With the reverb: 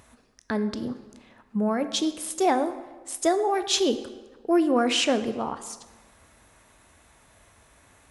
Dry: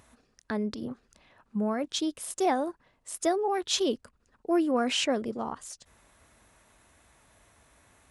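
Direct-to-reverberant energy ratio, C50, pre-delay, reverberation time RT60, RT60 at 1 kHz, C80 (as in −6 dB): 10.5 dB, 12.5 dB, 14 ms, 1.3 s, 1.3 s, 14.0 dB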